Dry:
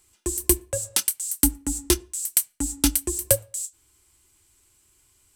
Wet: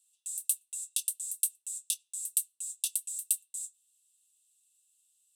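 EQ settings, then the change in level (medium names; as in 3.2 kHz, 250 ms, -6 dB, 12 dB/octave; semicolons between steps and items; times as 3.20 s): rippled Chebyshev high-pass 2.6 kHz, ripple 9 dB; -6.0 dB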